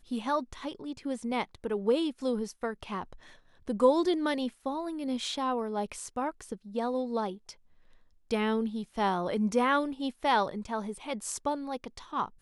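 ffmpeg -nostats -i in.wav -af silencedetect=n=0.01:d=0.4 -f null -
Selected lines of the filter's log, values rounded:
silence_start: 3.15
silence_end: 3.68 | silence_duration: 0.53
silence_start: 7.51
silence_end: 8.31 | silence_duration: 0.80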